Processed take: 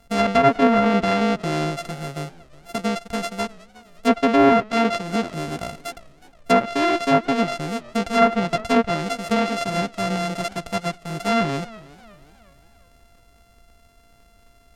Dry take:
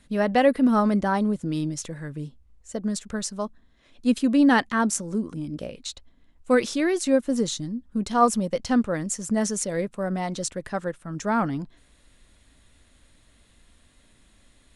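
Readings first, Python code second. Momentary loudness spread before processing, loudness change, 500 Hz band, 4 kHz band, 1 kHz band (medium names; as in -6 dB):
15 LU, +3.5 dB, +5.0 dB, +6.5 dB, +5.5 dB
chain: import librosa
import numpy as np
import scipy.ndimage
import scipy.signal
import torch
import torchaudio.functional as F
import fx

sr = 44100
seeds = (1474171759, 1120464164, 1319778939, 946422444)

y = np.r_[np.sort(x[:len(x) // 64 * 64].reshape(-1, 64), axis=1).ravel(), x[len(x) // 64 * 64:]]
y = fx.env_lowpass_down(y, sr, base_hz=1900.0, full_db=-15.5)
y = fx.echo_warbled(y, sr, ms=364, feedback_pct=41, rate_hz=2.8, cents=122, wet_db=-21.0)
y = y * librosa.db_to_amplitude(3.5)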